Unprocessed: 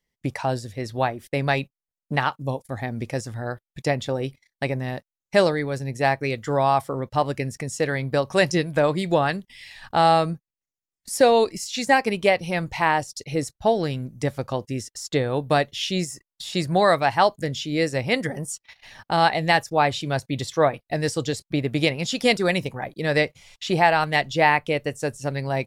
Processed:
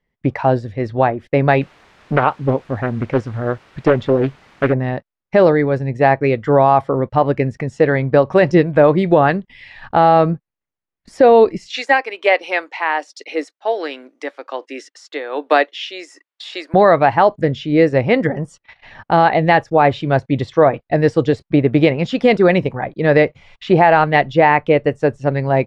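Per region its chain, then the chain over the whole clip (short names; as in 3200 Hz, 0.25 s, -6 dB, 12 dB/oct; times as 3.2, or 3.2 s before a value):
1.61–4.73 requantised 8-bit, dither triangular + Doppler distortion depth 0.61 ms
11.7–16.74 Chebyshev high-pass 280 Hz, order 5 + tilt shelf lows -7.5 dB, about 810 Hz + tremolo 1.3 Hz, depth 58%
whole clip: LPF 2100 Hz 12 dB/oct; dynamic EQ 400 Hz, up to +4 dB, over -29 dBFS, Q 0.8; maximiser +9 dB; gain -1 dB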